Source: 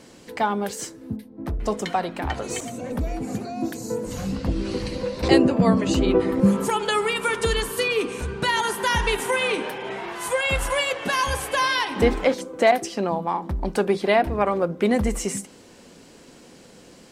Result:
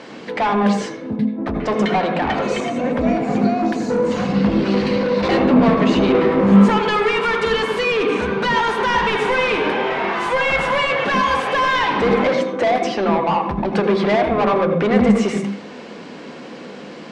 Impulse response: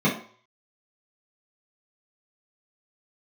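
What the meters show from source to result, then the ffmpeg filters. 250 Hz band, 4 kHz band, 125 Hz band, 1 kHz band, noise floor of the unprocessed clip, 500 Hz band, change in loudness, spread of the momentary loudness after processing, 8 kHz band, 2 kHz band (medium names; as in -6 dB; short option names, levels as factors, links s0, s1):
+7.5 dB, +2.5 dB, +5.0 dB, +6.5 dB, -48 dBFS, +5.5 dB, +6.0 dB, 9 LU, -6.5 dB, +5.5 dB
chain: -filter_complex "[0:a]asplit=2[s0][s1];[s1]highpass=f=720:p=1,volume=31.6,asoftclip=type=tanh:threshold=0.708[s2];[s0][s2]amix=inputs=2:normalize=0,lowpass=f=2200:p=1,volume=0.501,lowpass=4600,asplit=2[s3][s4];[1:a]atrim=start_sample=2205,adelay=78[s5];[s4][s5]afir=irnorm=-1:irlink=0,volume=0.0944[s6];[s3][s6]amix=inputs=2:normalize=0,volume=0.447"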